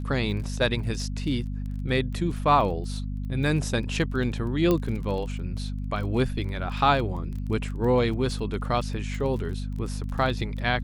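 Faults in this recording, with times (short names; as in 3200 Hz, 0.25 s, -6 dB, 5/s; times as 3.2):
crackle 21/s -34 dBFS
hum 50 Hz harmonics 5 -31 dBFS
4.71 pop -11 dBFS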